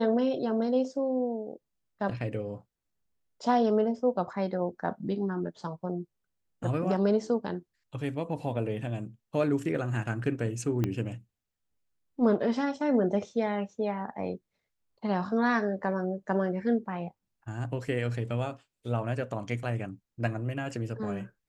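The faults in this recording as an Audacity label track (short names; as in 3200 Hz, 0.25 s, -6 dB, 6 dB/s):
10.840000	10.840000	pop -16 dBFS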